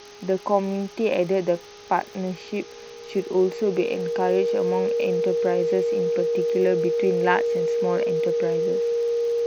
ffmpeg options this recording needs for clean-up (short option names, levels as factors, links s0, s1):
-af "adeclick=t=4,bandreject=f=410.9:t=h:w=4,bandreject=f=821.8:t=h:w=4,bandreject=f=1232.7:t=h:w=4,bandreject=f=470:w=30,afftdn=nr=27:nf=-41"